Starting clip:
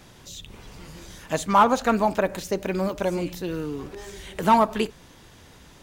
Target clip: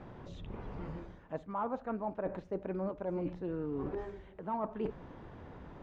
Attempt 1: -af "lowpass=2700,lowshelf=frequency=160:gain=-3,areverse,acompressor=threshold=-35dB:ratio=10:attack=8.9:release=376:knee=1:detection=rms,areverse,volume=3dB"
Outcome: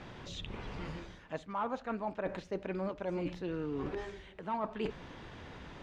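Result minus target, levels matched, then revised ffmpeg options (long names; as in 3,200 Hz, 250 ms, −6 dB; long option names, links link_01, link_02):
2,000 Hz band +7.5 dB
-af "lowpass=1100,lowshelf=frequency=160:gain=-3,areverse,acompressor=threshold=-35dB:ratio=10:attack=8.9:release=376:knee=1:detection=rms,areverse,volume=3dB"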